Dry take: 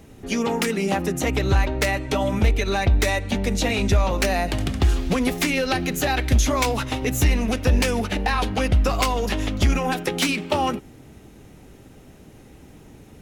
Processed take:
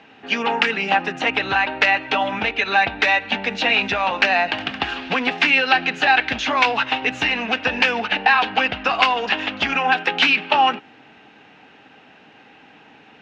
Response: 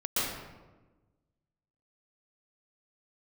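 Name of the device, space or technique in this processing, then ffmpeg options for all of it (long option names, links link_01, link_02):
phone earpiece: -af "highpass=360,equalizer=frequency=370:width_type=q:width=4:gain=-9,equalizer=frequency=560:width_type=q:width=4:gain=-6,equalizer=frequency=820:width_type=q:width=4:gain=6,equalizer=frequency=1600:width_type=q:width=4:gain=8,equalizer=frequency=2700:width_type=q:width=4:gain=9,lowpass=frequency=4200:width=0.5412,lowpass=frequency=4200:width=1.3066,volume=4dB"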